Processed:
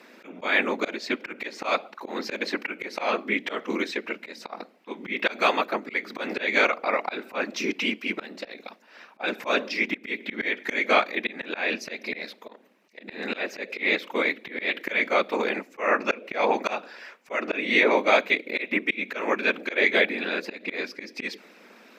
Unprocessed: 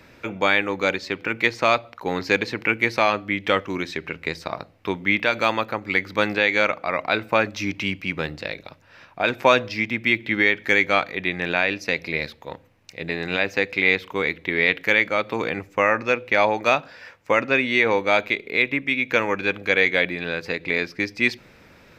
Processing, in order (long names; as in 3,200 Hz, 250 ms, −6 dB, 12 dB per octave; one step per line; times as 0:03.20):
random phases in short frames
linear-phase brick-wall high-pass 190 Hz
volume swells 184 ms